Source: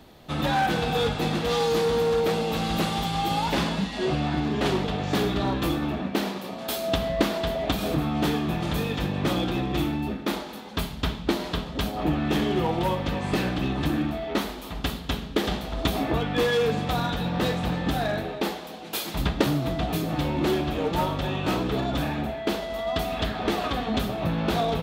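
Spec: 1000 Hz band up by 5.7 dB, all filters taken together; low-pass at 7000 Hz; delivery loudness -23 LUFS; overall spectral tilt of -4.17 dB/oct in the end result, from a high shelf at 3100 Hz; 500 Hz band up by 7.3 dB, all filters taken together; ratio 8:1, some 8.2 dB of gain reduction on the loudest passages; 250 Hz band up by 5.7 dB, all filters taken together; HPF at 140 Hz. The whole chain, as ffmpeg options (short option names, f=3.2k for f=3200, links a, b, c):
-af "highpass=140,lowpass=7k,equalizer=f=250:t=o:g=6,equalizer=f=500:t=o:g=6,equalizer=f=1k:t=o:g=4,highshelf=f=3.1k:g=7.5,acompressor=threshold=-22dB:ratio=8,volume=3.5dB"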